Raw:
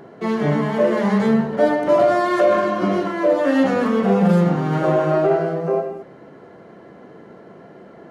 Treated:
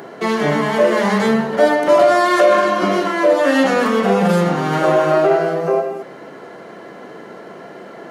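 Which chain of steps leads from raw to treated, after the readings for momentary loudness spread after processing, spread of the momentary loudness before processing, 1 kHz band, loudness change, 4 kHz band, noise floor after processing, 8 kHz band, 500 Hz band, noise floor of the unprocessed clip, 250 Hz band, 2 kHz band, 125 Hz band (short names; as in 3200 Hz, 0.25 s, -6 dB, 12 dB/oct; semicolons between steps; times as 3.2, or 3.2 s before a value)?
6 LU, 6 LU, +5.5 dB, +3.0 dB, +9.5 dB, -37 dBFS, n/a, +3.5 dB, -44 dBFS, 0.0 dB, +7.5 dB, -2.0 dB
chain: HPF 160 Hz 6 dB/oct; tilt +2 dB/oct; in parallel at -0.5 dB: compressor, threshold -31 dBFS, peak gain reduction 16.5 dB; on the sum: gain +4 dB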